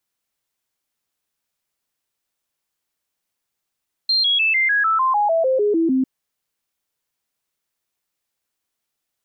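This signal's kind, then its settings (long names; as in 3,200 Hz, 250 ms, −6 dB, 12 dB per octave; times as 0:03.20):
stepped sweep 4,180 Hz down, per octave 3, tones 13, 0.15 s, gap 0.00 s −14.5 dBFS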